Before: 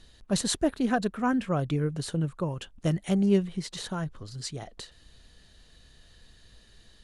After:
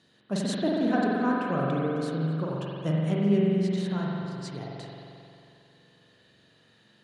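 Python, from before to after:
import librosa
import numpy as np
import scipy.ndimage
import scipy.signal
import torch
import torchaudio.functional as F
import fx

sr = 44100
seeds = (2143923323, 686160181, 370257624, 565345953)

y = scipy.signal.sosfilt(scipy.signal.butter(4, 130.0, 'highpass', fs=sr, output='sos'), x)
y = fx.high_shelf(y, sr, hz=5700.0, db=-11.0)
y = fx.rev_spring(y, sr, rt60_s=2.6, pass_ms=(44,), chirp_ms=50, drr_db=-4.0)
y = F.gain(torch.from_numpy(y), -3.5).numpy()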